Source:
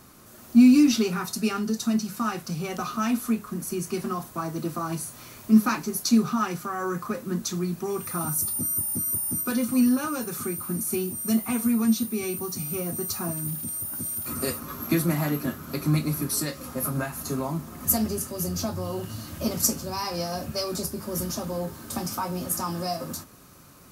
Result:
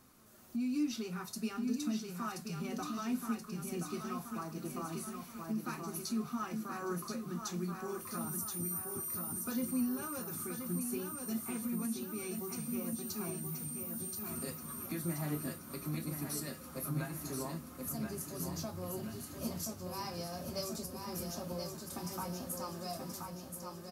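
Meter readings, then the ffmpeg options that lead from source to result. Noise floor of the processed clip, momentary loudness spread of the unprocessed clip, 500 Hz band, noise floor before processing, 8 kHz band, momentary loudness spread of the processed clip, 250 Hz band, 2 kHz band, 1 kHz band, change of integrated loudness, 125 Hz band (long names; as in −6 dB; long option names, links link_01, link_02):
−50 dBFS, 10 LU, −11.5 dB, −47 dBFS, −12.0 dB, 6 LU, −13.5 dB, −12.0 dB, −11.5 dB, −13.0 dB, −11.0 dB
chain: -filter_complex "[0:a]alimiter=limit=-17dB:level=0:latency=1:release=334,asplit=2[link_01][link_02];[link_02]aecho=0:1:1028|2056|3084|4112|5140|6168|7196:0.562|0.292|0.152|0.0791|0.0411|0.0214|0.0111[link_03];[link_01][link_03]amix=inputs=2:normalize=0,flanger=delay=3.7:depth=3:regen=76:speed=0.62:shape=triangular,volume=-7.5dB"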